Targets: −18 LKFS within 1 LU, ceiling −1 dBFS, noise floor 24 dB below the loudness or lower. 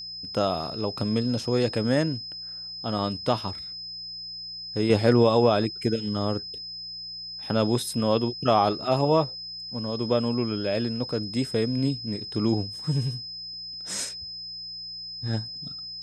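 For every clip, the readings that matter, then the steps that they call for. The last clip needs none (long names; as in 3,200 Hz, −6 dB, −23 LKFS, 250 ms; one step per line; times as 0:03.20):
mains hum 60 Hz; hum harmonics up to 180 Hz; level of the hum −58 dBFS; interfering tone 5,100 Hz; level of the tone −35 dBFS; integrated loudness −27.0 LKFS; sample peak −6.5 dBFS; target loudness −18.0 LKFS
→ hum removal 60 Hz, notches 3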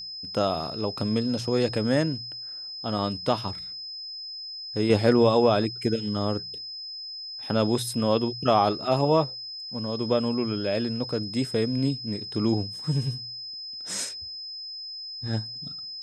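mains hum none found; interfering tone 5,100 Hz; level of the tone −35 dBFS
→ notch filter 5,100 Hz, Q 30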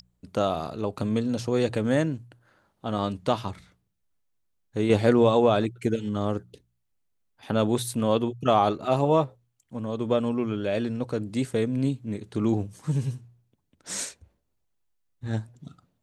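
interfering tone none found; integrated loudness −26.5 LKFS; sample peak −7.0 dBFS; target loudness −18.0 LKFS
→ level +8.5 dB
brickwall limiter −1 dBFS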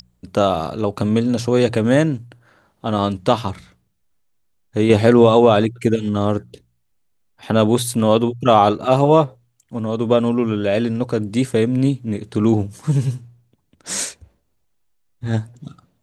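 integrated loudness −18.0 LKFS; sample peak −1.0 dBFS; background noise floor −66 dBFS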